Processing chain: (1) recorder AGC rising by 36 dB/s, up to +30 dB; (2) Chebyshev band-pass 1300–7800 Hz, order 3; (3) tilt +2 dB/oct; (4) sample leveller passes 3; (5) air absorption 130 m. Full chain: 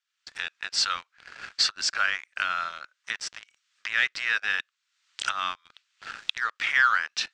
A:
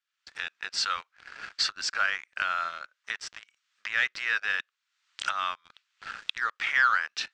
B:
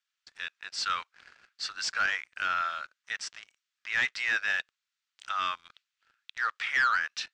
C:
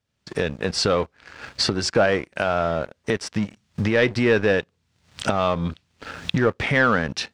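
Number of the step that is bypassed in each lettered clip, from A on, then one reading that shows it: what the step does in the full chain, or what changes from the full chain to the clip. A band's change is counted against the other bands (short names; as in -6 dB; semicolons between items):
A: 3, 8 kHz band -4.0 dB; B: 1, crest factor change -7.0 dB; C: 2, 500 Hz band +29.0 dB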